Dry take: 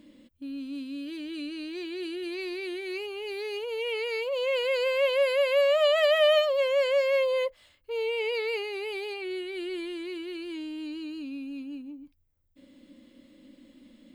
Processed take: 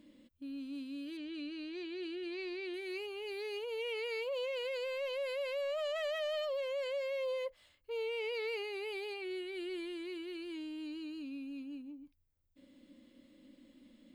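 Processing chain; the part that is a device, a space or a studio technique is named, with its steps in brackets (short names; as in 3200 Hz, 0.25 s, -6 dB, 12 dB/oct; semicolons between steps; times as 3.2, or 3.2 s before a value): 1.17–2.74 LPF 5200 Hz 12 dB/oct; soft clipper into limiter (soft clip -18 dBFS, distortion -18 dB; limiter -25.5 dBFS, peak gain reduction 7 dB); gain -6.5 dB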